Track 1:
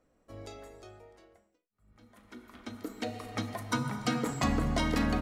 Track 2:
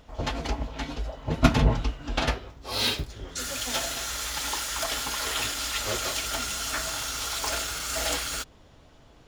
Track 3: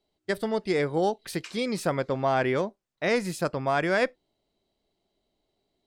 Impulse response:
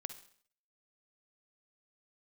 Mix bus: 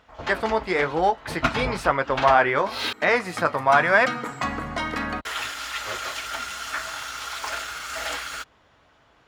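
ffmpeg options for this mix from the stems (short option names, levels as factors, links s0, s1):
-filter_complex "[0:a]volume=0.562[s0];[1:a]volume=0.335,asplit=3[s1][s2][s3];[s1]atrim=end=2.93,asetpts=PTS-STARTPTS,afade=t=out:st=2.926:d=0.004:c=hsin[s4];[s2]atrim=start=2.93:end=5.25,asetpts=PTS-STARTPTS,volume=0[s5];[s3]atrim=start=5.25,asetpts=PTS-STARTPTS,afade=t=in:d=0.004:c=hsin[s6];[s4][s5][s6]concat=n=3:v=0:a=1[s7];[2:a]equalizer=f=930:w=1.5:g=5.5,acontrast=49,flanger=delay=6.6:depth=7.4:regen=-48:speed=0.97:shape=sinusoidal,volume=0.501[s8];[s0][s7][s8]amix=inputs=3:normalize=0,highpass=48,equalizer=f=1500:t=o:w=2.5:g=13.5"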